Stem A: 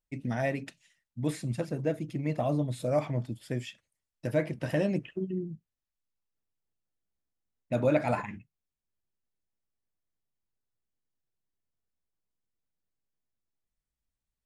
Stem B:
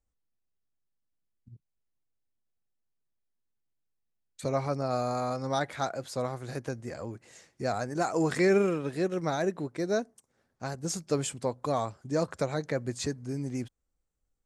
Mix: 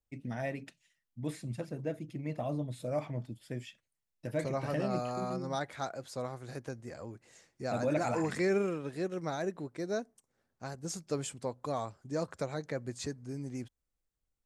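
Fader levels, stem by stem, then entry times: −6.5, −6.0 decibels; 0.00, 0.00 seconds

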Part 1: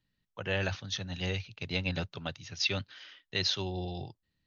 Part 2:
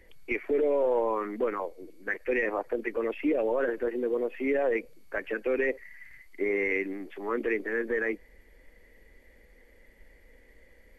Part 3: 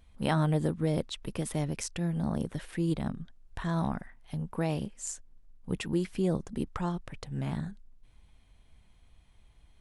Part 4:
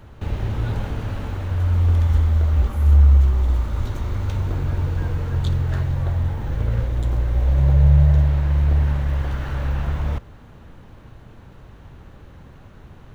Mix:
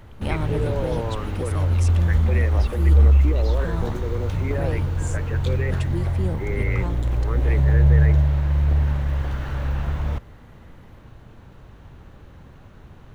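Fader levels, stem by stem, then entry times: −14.5, −3.0, −1.5, −1.5 decibels; 0.00, 0.00, 0.00, 0.00 seconds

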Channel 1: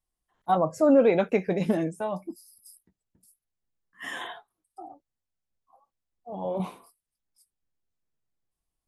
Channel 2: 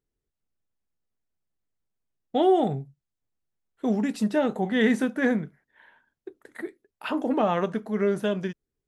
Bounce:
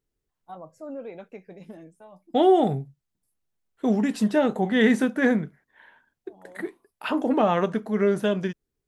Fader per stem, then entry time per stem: −18.0, +2.5 decibels; 0.00, 0.00 seconds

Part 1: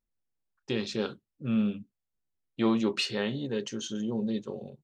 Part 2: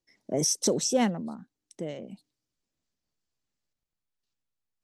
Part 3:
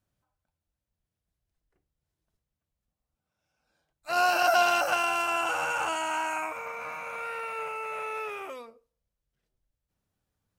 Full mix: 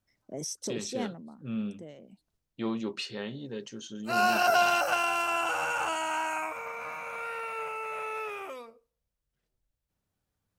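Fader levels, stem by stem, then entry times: −6.5, −10.5, −1.0 decibels; 0.00, 0.00, 0.00 seconds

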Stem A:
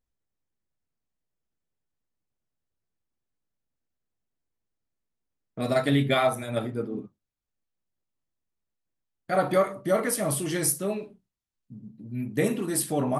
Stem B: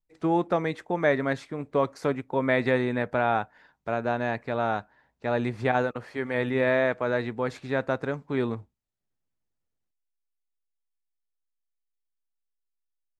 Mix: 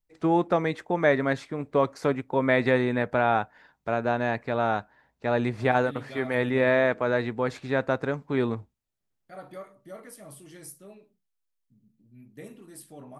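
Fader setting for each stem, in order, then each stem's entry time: −19.0, +1.5 decibels; 0.00, 0.00 seconds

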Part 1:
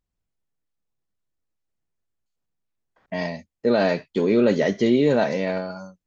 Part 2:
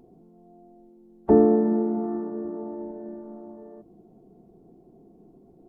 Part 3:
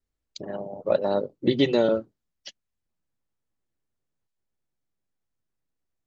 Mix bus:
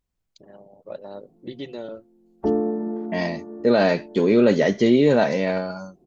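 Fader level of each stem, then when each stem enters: +2.0, −5.0, −13.5 decibels; 0.00, 1.15, 0.00 seconds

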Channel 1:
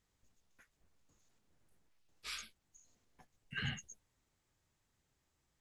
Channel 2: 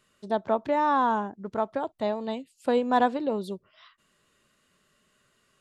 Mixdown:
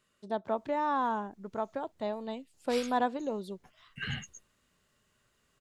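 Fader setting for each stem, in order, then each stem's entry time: +3.0, −6.5 decibels; 0.45, 0.00 seconds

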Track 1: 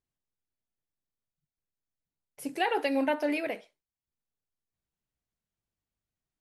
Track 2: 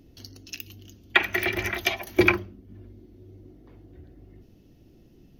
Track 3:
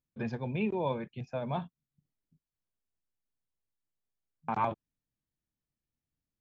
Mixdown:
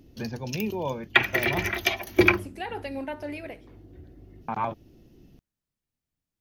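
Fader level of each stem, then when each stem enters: −6.5, +0.5, +1.5 decibels; 0.00, 0.00, 0.00 seconds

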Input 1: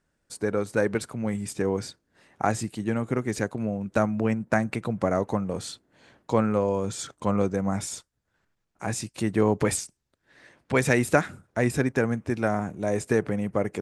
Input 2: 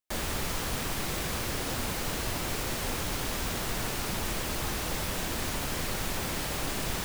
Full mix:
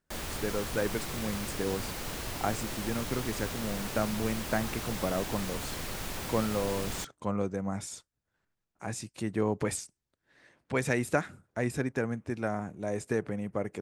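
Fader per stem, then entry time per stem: −7.0, −5.0 decibels; 0.00, 0.00 seconds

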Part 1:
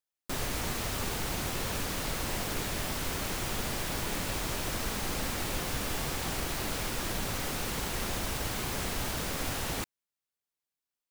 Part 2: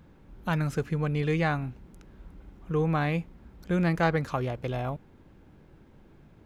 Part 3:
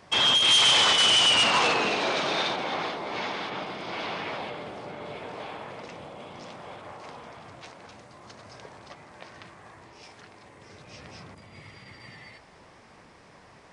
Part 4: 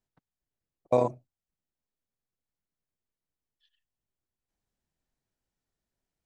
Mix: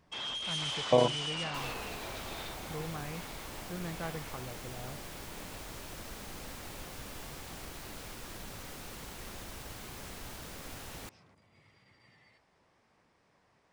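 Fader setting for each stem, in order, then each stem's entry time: −11.5, −15.0, −17.0, −0.5 decibels; 1.25, 0.00, 0.00, 0.00 seconds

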